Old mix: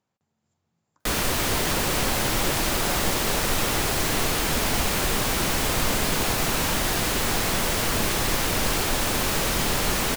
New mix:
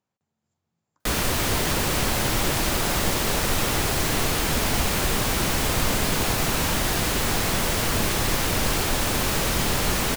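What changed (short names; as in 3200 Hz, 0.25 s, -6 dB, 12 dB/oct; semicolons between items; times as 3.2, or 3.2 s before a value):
speech -4.0 dB; background: add bell 81 Hz +3.5 dB 2.3 oct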